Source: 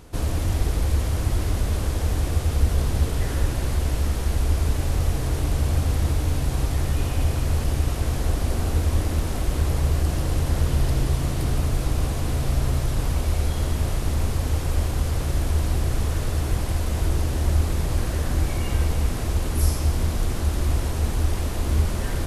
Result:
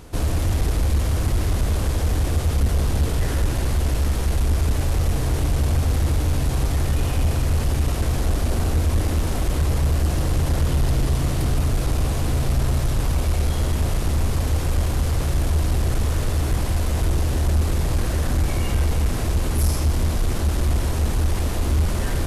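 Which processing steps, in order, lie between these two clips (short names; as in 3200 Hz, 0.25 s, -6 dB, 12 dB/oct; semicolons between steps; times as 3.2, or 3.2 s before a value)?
soft clip -16.5 dBFS, distortion -16 dB; gain +4 dB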